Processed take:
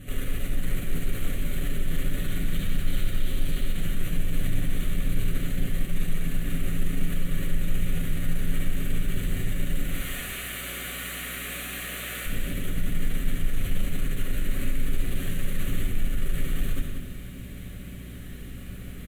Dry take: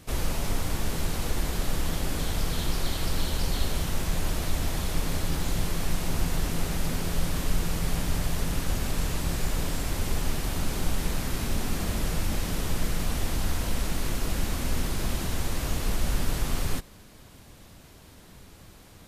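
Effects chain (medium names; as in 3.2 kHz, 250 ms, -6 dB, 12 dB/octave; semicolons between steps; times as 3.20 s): 9.92–12.26 s: high-pass 760 Hz 12 dB/octave; compression 2.5:1, threshold -28 dBFS, peak gain reduction 7.5 dB; hum 60 Hz, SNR 16 dB; valve stage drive 36 dB, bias 0.3; static phaser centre 2.2 kHz, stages 4; delay 72 ms -6.5 dB; reverberation RT60 0.95 s, pre-delay 5 ms, DRR -3.5 dB; bit-crushed delay 185 ms, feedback 35%, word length 9-bit, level -8 dB; trim +3.5 dB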